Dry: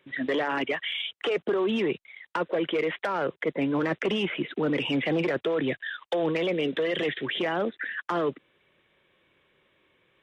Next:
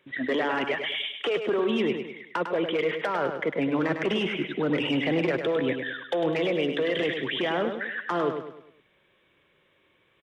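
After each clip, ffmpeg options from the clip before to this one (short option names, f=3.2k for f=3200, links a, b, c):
-af "aecho=1:1:102|204|306|408|510:0.447|0.188|0.0788|0.0331|0.0139"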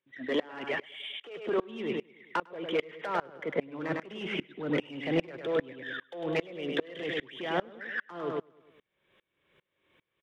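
-filter_complex "[0:a]asplit=2[a][b];[b]asoftclip=type=tanh:threshold=-30dB,volume=-11dB[c];[a][c]amix=inputs=2:normalize=0,aeval=exprs='val(0)*pow(10,-27*if(lt(mod(-2.5*n/s,1),2*abs(-2.5)/1000),1-mod(-2.5*n/s,1)/(2*abs(-2.5)/1000),(mod(-2.5*n/s,1)-2*abs(-2.5)/1000)/(1-2*abs(-2.5)/1000))/20)':c=same"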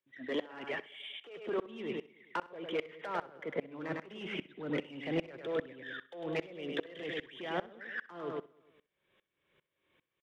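-af "aecho=1:1:64|128:0.112|0.0281,volume=-5.5dB"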